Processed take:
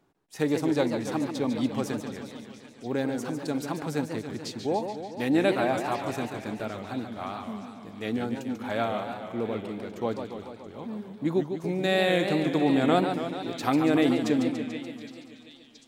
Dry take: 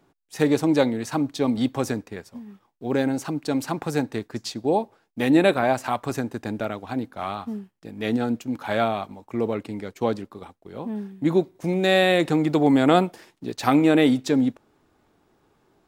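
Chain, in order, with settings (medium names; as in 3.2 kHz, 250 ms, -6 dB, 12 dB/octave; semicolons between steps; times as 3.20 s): repeats whose band climbs or falls 744 ms, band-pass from 2.7 kHz, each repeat 0.7 oct, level -10 dB; modulated delay 144 ms, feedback 68%, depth 200 cents, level -7.5 dB; trim -6 dB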